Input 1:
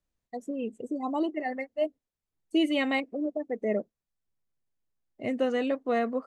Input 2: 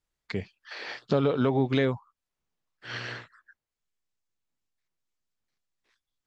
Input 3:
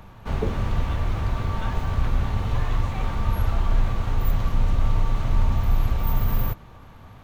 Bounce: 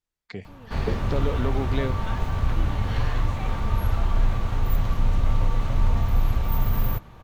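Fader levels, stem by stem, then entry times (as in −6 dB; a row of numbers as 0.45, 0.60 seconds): −18.0, −4.5, −0.5 decibels; 0.00, 0.00, 0.45 seconds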